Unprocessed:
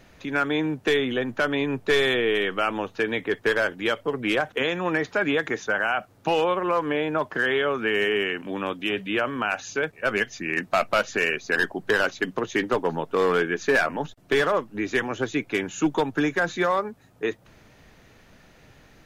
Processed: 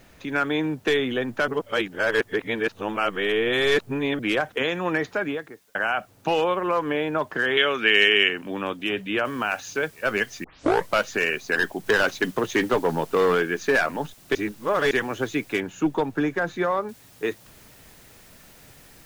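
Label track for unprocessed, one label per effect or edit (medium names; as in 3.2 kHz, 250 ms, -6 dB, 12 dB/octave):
1.480000	4.190000	reverse
4.990000	5.750000	studio fade out
7.570000	8.290000	frequency weighting D
9.250000	9.250000	noise floor step -64 dB -53 dB
10.440000	10.440000	tape start 0.49 s
11.860000	13.350000	waveshaping leveller passes 1
14.350000	14.910000	reverse
15.600000	16.890000	treble shelf 2.5 kHz -10 dB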